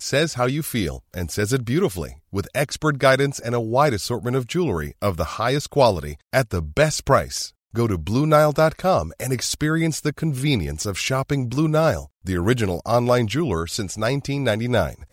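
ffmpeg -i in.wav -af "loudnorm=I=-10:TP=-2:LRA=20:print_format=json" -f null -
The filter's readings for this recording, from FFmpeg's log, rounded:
"input_i" : "-21.8",
"input_tp" : "-2.5",
"input_lra" : "1.8",
"input_thresh" : "-31.8",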